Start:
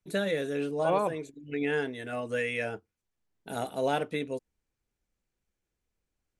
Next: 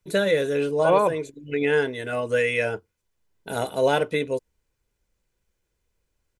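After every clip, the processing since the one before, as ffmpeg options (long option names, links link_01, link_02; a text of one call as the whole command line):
ffmpeg -i in.wav -af "aecho=1:1:2:0.34,volume=7dB" out.wav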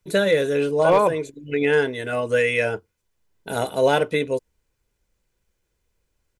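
ffmpeg -i in.wav -af "volume=11.5dB,asoftclip=hard,volume=-11.5dB,volume=2.5dB" out.wav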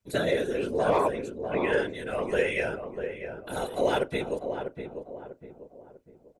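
ffmpeg -i in.wav -filter_complex "[0:a]afftfilt=real='hypot(re,im)*cos(2*PI*random(0))':imag='hypot(re,im)*sin(2*PI*random(1))':win_size=512:overlap=0.75,asplit=2[link_01][link_02];[link_02]adelay=646,lowpass=frequency=1100:poles=1,volume=-6.5dB,asplit=2[link_03][link_04];[link_04]adelay=646,lowpass=frequency=1100:poles=1,volume=0.41,asplit=2[link_05][link_06];[link_06]adelay=646,lowpass=frequency=1100:poles=1,volume=0.41,asplit=2[link_07][link_08];[link_08]adelay=646,lowpass=frequency=1100:poles=1,volume=0.41,asplit=2[link_09][link_10];[link_10]adelay=646,lowpass=frequency=1100:poles=1,volume=0.41[link_11];[link_01][link_03][link_05][link_07][link_09][link_11]amix=inputs=6:normalize=0,volume=-1.5dB" out.wav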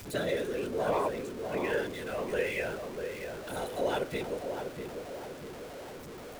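ffmpeg -i in.wav -af "aeval=exprs='val(0)+0.5*0.0224*sgn(val(0))':channel_layout=same,volume=-6.5dB" out.wav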